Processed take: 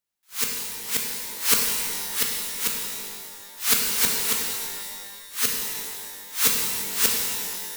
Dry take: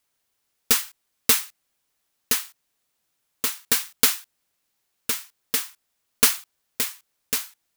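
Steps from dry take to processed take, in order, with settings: reverse the whole clip; waveshaping leveller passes 2; pitch-shifted reverb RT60 1.9 s, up +12 st, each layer -2 dB, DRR 0 dB; trim -8.5 dB

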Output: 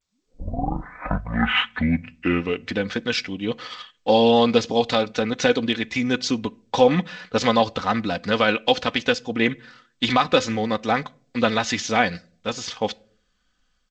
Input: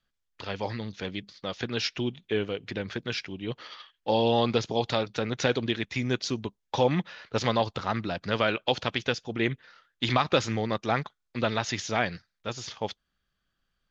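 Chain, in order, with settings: tape start-up on the opening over 2.82 s; comb 4 ms, depth 55%; level rider gain up to 7 dB; on a send at -21 dB: reverberation RT60 0.50 s, pre-delay 3 ms; on the sum: G.722 64 kbps 16 kHz

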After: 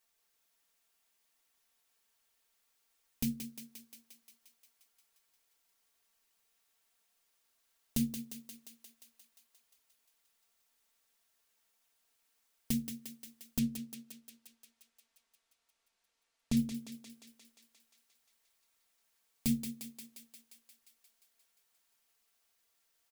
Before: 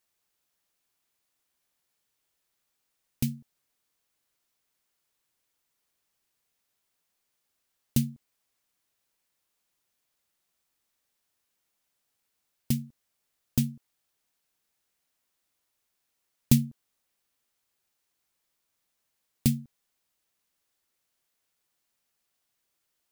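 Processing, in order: peaking EQ 150 Hz -6 dB 1.6 oct; hum notches 60/120/180/240/300/360/420/480/540/600 Hz; comb 4.4 ms, depth 54%; peak limiter -19 dBFS, peak gain reduction 10.5 dB; 13.59–16.57 s: distance through air 61 m; thinning echo 176 ms, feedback 72%, high-pass 300 Hz, level -7 dB

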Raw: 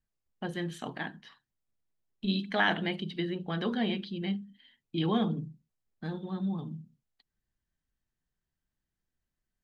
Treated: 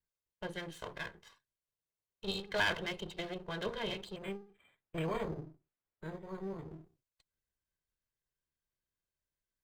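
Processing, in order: comb filter that takes the minimum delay 1.9 ms; bass shelf 110 Hz -6 dB; 4.16–6.71 s: decimation joined by straight lines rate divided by 8×; trim -4 dB

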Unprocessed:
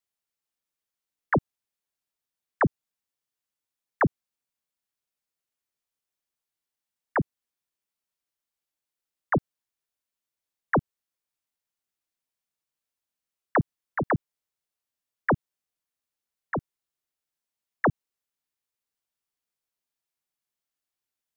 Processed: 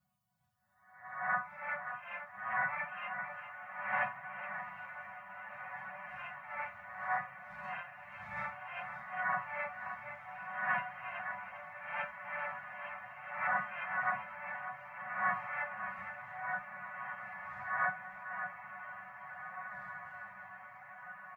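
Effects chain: reverse spectral sustain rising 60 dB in 0.77 s; wind noise 120 Hz -36 dBFS; high-pass 75 Hz 24 dB/octave; tilt EQ +3 dB/octave; chord resonator B3 fifth, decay 0.35 s; feedback delay 572 ms, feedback 28%, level -9 dB; reverberation RT60 0.45 s, pre-delay 6 ms, DRR 9 dB; ever faster or slower copies 599 ms, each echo +3 st, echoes 2, each echo -6 dB; echo that smears into a reverb 1854 ms, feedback 64%, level -9 dB; flange 0.66 Hz, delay 4.6 ms, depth 5.9 ms, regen -35%; FFT band-reject 220–530 Hz; trim +8.5 dB

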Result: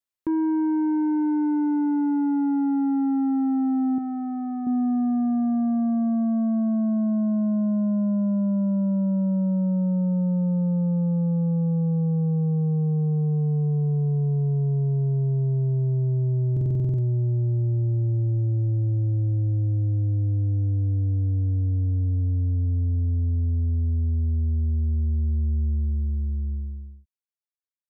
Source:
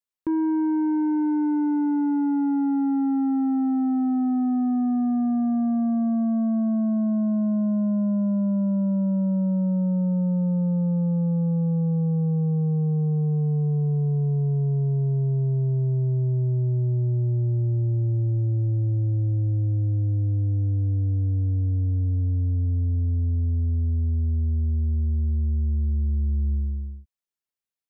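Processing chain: fade out at the end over 2.25 s; 3.98–4.67 s: bass shelf 310 Hz -11 dB; buffer glitch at 16.52 s, samples 2048, times 9

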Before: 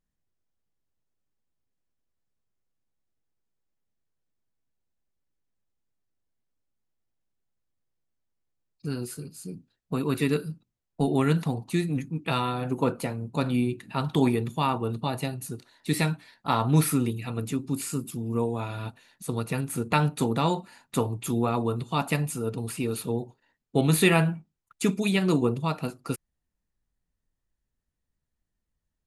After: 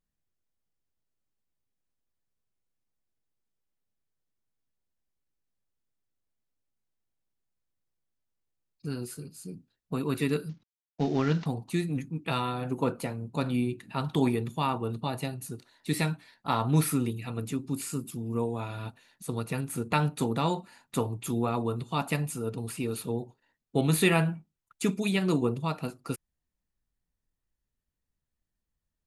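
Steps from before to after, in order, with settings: 10.49–11.46 s: CVSD coder 32 kbps; trim -3 dB

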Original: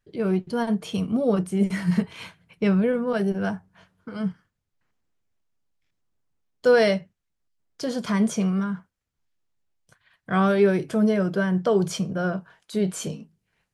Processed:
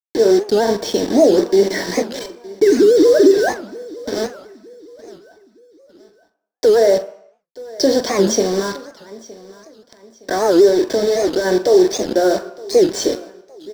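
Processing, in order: 2.19–3.48 s: formants replaced by sine waves; elliptic high-pass 290 Hz, stop band 60 dB; low-pass that closes with the level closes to 1.5 kHz, closed at -20 dBFS; level rider gain up to 3.5 dB; peak limiter -19.5 dBFS, peak gain reduction 12 dB; 10.68–11.45 s: compression 4:1, threshold -29 dBFS, peak gain reduction 6 dB; bit crusher 6-bit; doubling 44 ms -13.5 dB; feedback delay 915 ms, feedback 37%, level -21 dB; reverberation RT60 0.70 s, pre-delay 3 ms, DRR 9.5 dB; warped record 78 rpm, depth 250 cents; trim +4 dB

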